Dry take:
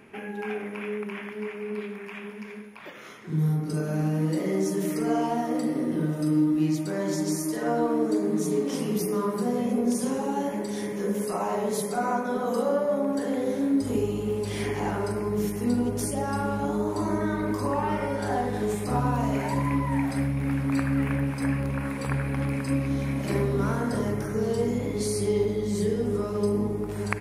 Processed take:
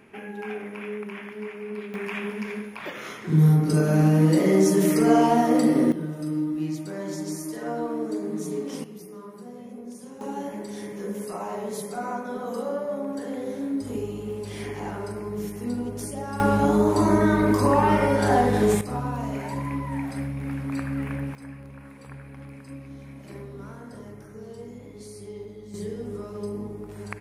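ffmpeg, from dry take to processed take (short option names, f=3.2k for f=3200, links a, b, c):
-af "asetnsamples=n=441:p=0,asendcmd='1.94 volume volume 7.5dB;5.92 volume volume -4.5dB;8.84 volume volume -15dB;10.21 volume volume -4.5dB;16.4 volume volume 7.5dB;18.81 volume volume -4dB;21.35 volume volume -14.5dB;25.74 volume volume -7.5dB',volume=-1.5dB"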